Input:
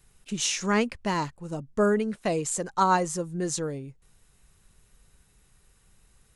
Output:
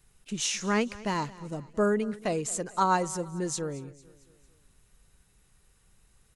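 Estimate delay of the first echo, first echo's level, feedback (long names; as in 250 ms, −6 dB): 225 ms, −20.0 dB, 51%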